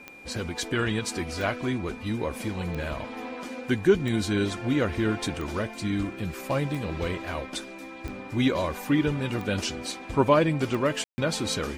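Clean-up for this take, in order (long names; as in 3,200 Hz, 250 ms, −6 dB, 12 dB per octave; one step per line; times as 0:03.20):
click removal
notch filter 2,400 Hz, Q 30
ambience match 0:11.04–0:11.18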